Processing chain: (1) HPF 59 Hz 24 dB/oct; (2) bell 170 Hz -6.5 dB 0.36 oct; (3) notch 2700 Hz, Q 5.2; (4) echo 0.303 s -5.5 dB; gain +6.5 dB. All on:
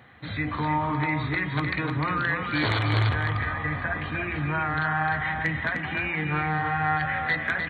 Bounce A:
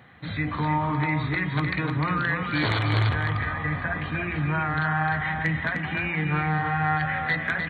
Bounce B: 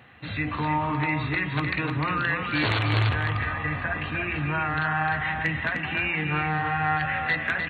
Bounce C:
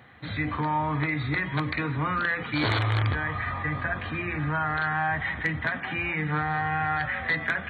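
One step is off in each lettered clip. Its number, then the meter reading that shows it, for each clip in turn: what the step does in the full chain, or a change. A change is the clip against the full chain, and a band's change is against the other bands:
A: 2, 125 Hz band +2.0 dB; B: 3, 4 kHz band +2.0 dB; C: 4, loudness change -1.0 LU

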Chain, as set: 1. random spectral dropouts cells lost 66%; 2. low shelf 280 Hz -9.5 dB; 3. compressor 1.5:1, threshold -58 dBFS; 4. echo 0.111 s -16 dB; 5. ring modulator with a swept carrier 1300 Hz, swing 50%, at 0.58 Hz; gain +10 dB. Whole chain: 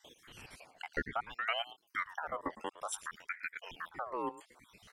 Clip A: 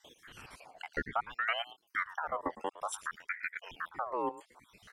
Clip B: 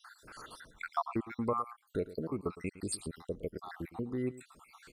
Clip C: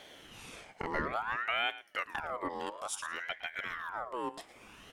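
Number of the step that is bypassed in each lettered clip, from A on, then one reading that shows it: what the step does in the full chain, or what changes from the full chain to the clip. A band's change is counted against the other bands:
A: 2, 8 kHz band -3.0 dB; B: 5, crest factor change -2.5 dB; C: 1, 125 Hz band +1.5 dB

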